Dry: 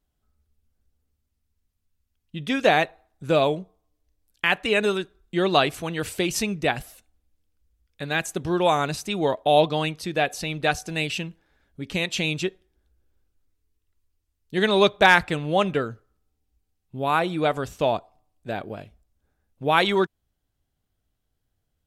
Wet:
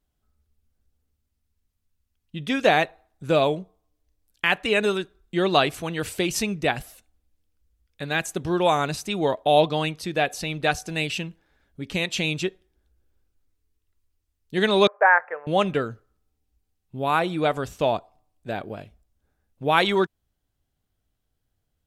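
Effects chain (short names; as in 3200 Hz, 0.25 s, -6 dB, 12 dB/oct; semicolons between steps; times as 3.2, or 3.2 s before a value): 14.87–15.47 elliptic band-pass 480–1800 Hz, stop band 40 dB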